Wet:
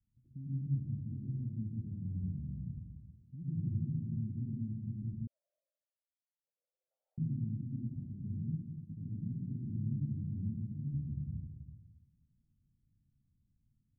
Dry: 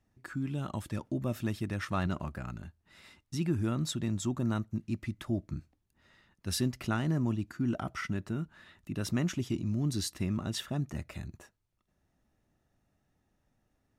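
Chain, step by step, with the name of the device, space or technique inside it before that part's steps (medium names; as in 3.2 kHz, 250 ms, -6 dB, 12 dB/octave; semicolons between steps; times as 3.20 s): club heard from the street (peak limiter -28.5 dBFS, peak gain reduction 9.5 dB; low-pass 200 Hz 24 dB/octave; reverberation RT60 1.2 s, pre-delay 93 ms, DRR -7 dB); 5.27–7.18 s: steep high-pass 530 Hz 96 dB/octave; trim -6.5 dB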